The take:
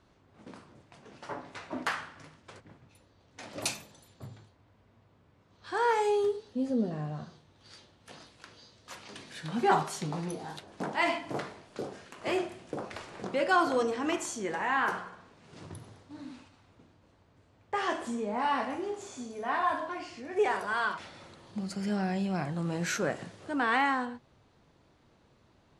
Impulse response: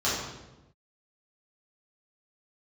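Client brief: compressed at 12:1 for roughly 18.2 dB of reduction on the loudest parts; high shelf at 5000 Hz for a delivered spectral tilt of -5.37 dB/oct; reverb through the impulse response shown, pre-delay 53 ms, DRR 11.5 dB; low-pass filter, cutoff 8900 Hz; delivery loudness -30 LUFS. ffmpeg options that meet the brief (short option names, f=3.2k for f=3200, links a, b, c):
-filter_complex "[0:a]lowpass=8.9k,highshelf=f=5k:g=-9,acompressor=threshold=-39dB:ratio=12,asplit=2[a][b];[1:a]atrim=start_sample=2205,adelay=53[c];[b][c]afir=irnorm=-1:irlink=0,volume=-24dB[d];[a][d]amix=inputs=2:normalize=0,volume=14.5dB"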